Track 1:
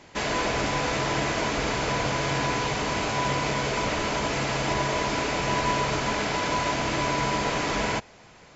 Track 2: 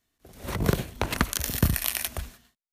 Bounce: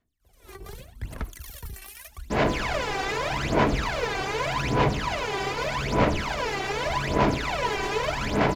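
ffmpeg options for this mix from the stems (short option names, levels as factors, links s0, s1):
-filter_complex "[0:a]acrusher=bits=5:mix=0:aa=0.5,adynamicsmooth=sensitivity=3.5:basefreq=4000,adelay=2150,volume=0.596[s0];[1:a]asoftclip=type=tanh:threshold=0.0841,aphaser=in_gain=1:out_gain=1:delay=3:decay=0.49:speed=1.1:type=sinusoidal,volume=0.168[s1];[s0][s1]amix=inputs=2:normalize=0,aphaser=in_gain=1:out_gain=1:delay=2.6:decay=0.79:speed=0.83:type=sinusoidal"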